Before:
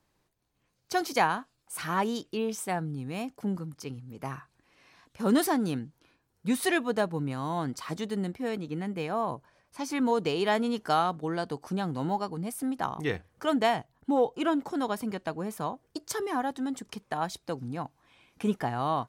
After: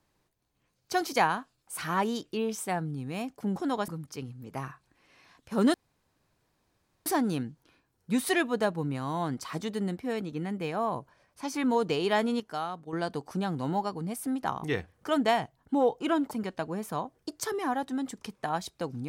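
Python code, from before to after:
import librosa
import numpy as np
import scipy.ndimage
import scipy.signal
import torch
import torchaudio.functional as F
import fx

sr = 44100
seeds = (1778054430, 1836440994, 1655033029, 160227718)

y = fx.edit(x, sr, fx.insert_room_tone(at_s=5.42, length_s=1.32),
    fx.clip_gain(start_s=10.76, length_s=0.53, db=-8.5),
    fx.move(start_s=14.67, length_s=0.32, to_s=3.56), tone=tone)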